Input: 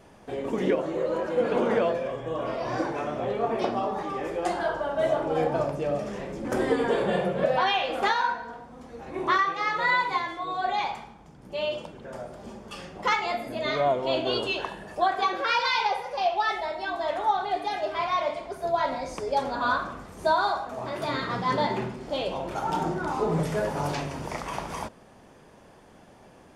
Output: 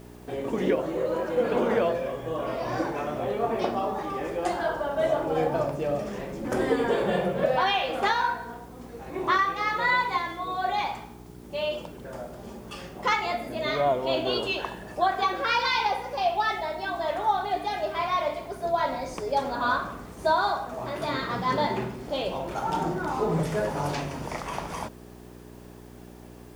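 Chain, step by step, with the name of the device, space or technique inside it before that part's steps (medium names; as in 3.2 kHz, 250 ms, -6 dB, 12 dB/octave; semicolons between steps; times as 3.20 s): video cassette with head-switching buzz (mains buzz 60 Hz, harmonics 7, -47 dBFS -1 dB/octave; white noise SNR 33 dB)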